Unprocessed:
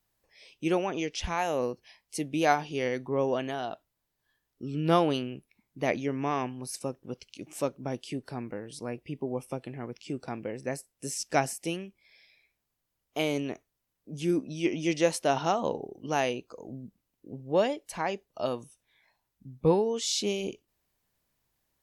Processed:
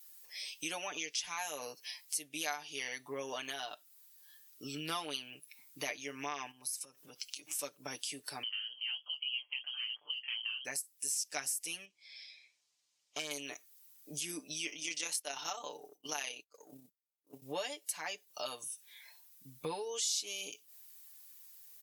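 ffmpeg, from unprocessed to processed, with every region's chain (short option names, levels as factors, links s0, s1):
-filter_complex "[0:a]asettb=1/sr,asplit=3[s0][s1][s2];[s0]atrim=end=6.514[s3];[s1]atrim=start=6.51:end=7.59,asetpts=PTS-STARTPTS,afade=t=in:d=0.004:c=qsin,afade=t=out:st=1.076:d=0.004:c=qsin,bandreject=f=50:t=h:w=6,bandreject=f=100:t=h:w=6,acompressor=threshold=0.00562:ratio=5:attack=3.2:release=140:knee=1:detection=peak[s4];[s2]atrim=start=7.586[s5];[s3][s4]acrossfade=d=0.004:c1=hsin:c2=qsin[s6];[s6][s5]acrossfade=d=0.004:c1=qsin:c2=hsin,asettb=1/sr,asplit=3[s7][s8][s9];[s7]atrim=end=8.434[s10];[s8]atrim=start=8.43:end=10.65,asetpts=PTS-STARTPTS,afade=t=in:d=0.004:c=qsin,afade=t=out:st=2.216:d=0.004:c=qsin,lowpass=f=2800:t=q:w=0.5098,lowpass=f=2800:t=q:w=0.6013,lowpass=f=2800:t=q:w=0.9,lowpass=f=2800:t=q:w=2.563,afreqshift=-3300,flanger=delay=17:depth=4.7:speed=3[s11];[s9]atrim=start=10.646[s12];[s10][s11]acrossfade=d=0.004:c1=hsin:c2=qsin[s13];[s13][s12]acrossfade=d=0.004:c1=qsin:c2=hsin,asettb=1/sr,asplit=3[s14][s15][s16];[s14]atrim=end=11.854[s17];[s15]atrim=start=11.85:end=13.31,asetpts=PTS-STARTPTS,afade=t=in:d=0.004:c=qsin,afade=t=out:st=1.456:d=0.004:c=qsin,lowpass=f=6800:w=0.5412,lowpass=f=6800:w=1.3066,equalizer=f=1500:w=2.2:g=-5.5,aeval=exprs='(tanh(17.8*val(0)+0.75)-tanh(0.75))/17.8':c=same[s18];[s16]atrim=start=13.306[s19];[s17][s18]acrossfade=d=0.004:c1=hsin:c2=qsin[s20];[s20][s19]acrossfade=d=0.004:c1=qsin:c2=hsin,asettb=1/sr,asplit=3[s21][s22][s23];[s21]atrim=end=14.704[s24];[s22]atrim=start=14.7:end=17.42,asetpts=PTS-STARTPTS,afade=t=in:d=0.004:c=qsin,afade=t=out:st=2.716:d=0.004:c=qsin,agate=range=0.0224:threshold=0.0112:ratio=3:release=100:detection=peak,highpass=f=220:p=1,tremolo=f=33:d=0.519[s25];[s23]atrim=start=17.416[s26];[s24][s25]acrossfade=d=0.004:c1=hsin:c2=qsin[s27];[s27][s26]acrossfade=d=0.004:c1=qsin:c2=hsin,aderivative,aecho=1:1:6.8:0.77,acompressor=threshold=0.00112:ratio=3,volume=7.94"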